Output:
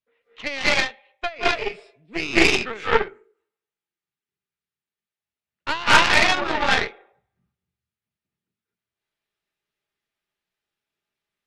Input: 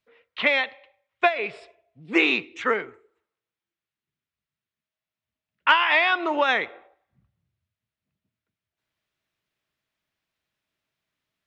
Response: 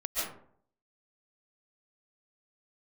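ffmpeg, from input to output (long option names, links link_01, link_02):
-filter_complex "[0:a]acontrast=20[link_01];[1:a]atrim=start_sample=2205,afade=type=out:start_time=0.22:duration=0.01,atrim=end_sample=10143,asetrate=28224,aresample=44100[link_02];[link_01][link_02]afir=irnorm=-1:irlink=0,aeval=exprs='2.24*(cos(1*acos(clip(val(0)/2.24,-1,1)))-cos(1*PI/2))+0.112*(cos(5*acos(clip(val(0)/2.24,-1,1)))-cos(5*PI/2))+0.562*(cos(6*acos(clip(val(0)/2.24,-1,1)))-cos(6*PI/2))+0.251*(cos(7*acos(clip(val(0)/2.24,-1,1)))-cos(7*PI/2))+0.141*(cos(8*acos(clip(val(0)/2.24,-1,1)))-cos(8*PI/2))':channel_layout=same,volume=-9dB"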